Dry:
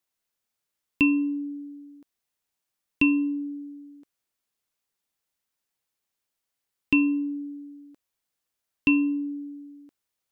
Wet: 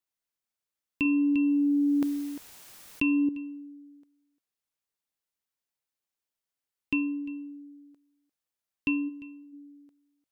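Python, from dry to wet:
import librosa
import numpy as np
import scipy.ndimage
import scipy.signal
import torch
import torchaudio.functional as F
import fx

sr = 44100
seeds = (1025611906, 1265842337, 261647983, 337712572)

y = fx.peak_eq(x, sr, hz=130.0, db=-13.5, octaves=2.6, at=(9.08, 9.52), fade=0.02)
y = y + 10.0 ** (-20.0 / 20.0) * np.pad(y, (int(349 * sr / 1000.0), 0))[:len(y)]
y = fx.env_flatten(y, sr, amount_pct=100, at=(1.05, 3.29))
y = F.gain(torch.from_numpy(y), -7.0).numpy()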